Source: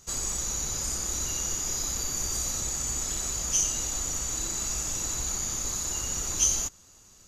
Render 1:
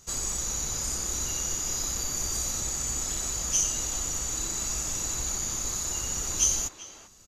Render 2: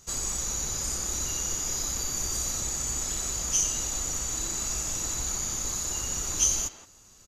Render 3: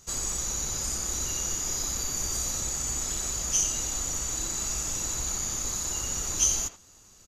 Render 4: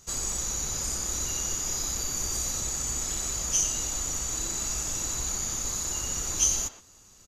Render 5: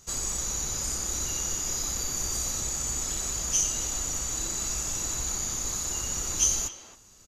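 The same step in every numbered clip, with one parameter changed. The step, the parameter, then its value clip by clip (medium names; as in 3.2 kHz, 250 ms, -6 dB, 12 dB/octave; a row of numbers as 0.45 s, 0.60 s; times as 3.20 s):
speakerphone echo, time: 390 ms, 170 ms, 80 ms, 120 ms, 270 ms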